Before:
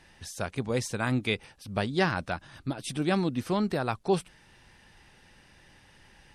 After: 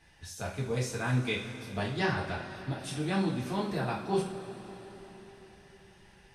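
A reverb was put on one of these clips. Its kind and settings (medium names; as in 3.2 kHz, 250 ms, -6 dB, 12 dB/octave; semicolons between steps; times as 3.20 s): two-slope reverb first 0.36 s, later 4.6 s, from -18 dB, DRR -5.5 dB; trim -9.5 dB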